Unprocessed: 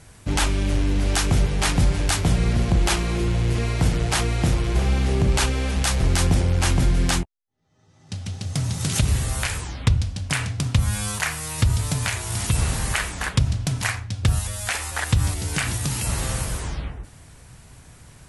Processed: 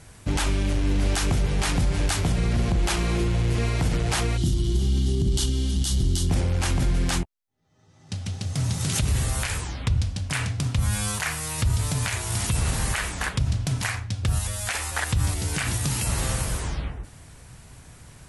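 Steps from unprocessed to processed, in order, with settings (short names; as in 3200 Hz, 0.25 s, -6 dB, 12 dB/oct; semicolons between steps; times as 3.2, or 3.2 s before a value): spectral gain 4.37–6.3, 400–2800 Hz -17 dB; limiter -14.5 dBFS, peak gain reduction 7.5 dB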